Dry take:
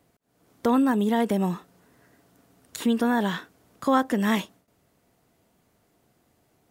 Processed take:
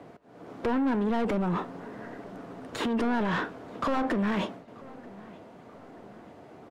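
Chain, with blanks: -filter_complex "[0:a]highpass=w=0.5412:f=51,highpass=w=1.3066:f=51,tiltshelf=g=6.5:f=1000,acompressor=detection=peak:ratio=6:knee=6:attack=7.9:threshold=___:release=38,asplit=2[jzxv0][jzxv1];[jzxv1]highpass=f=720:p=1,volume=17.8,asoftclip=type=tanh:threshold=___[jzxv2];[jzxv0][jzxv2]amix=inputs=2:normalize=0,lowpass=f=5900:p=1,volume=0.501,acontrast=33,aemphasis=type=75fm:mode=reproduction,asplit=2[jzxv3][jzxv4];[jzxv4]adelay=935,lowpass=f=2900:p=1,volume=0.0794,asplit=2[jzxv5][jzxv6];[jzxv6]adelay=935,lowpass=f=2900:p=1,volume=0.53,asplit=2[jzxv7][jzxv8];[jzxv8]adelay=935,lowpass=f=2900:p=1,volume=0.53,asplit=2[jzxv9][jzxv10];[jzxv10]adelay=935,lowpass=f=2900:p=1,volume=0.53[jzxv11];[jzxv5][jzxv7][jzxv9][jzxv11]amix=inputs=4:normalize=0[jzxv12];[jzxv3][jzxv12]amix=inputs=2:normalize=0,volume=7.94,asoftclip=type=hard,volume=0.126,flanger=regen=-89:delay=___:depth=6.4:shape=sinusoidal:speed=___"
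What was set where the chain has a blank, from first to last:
0.0224, 0.0944, 6.5, 0.7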